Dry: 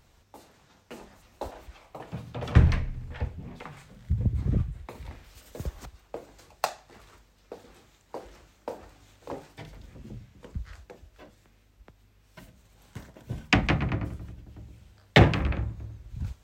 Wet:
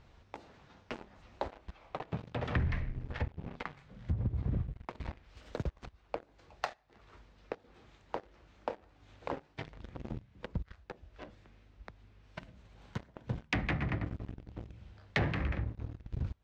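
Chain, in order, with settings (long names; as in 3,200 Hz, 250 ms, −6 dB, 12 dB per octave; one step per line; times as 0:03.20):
dynamic equaliser 1,900 Hz, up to +7 dB, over −52 dBFS, Q 2.8
leveller curve on the samples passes 3
downward compressor 3 to 1, threshold −48 dBFS, peak gain reduction 29.5 dB
high-frequency loss of the air 170 metres
level +7.5 dB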